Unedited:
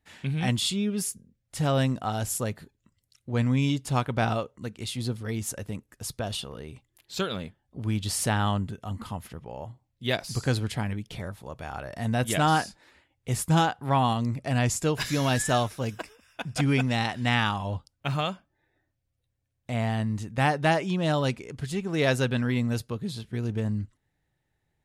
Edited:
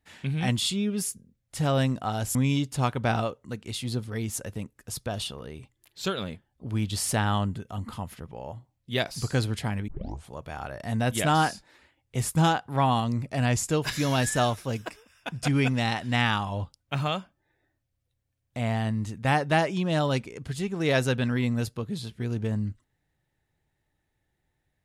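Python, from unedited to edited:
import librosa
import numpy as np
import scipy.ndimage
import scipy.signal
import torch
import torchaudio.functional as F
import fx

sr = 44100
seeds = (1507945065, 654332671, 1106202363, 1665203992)

y = fx.edit(x, sr, fx.cut(start_s=2.35, length_s=1.13),
    fx.tape_start(start_s=11.01, length_s=0.42), tone=tone)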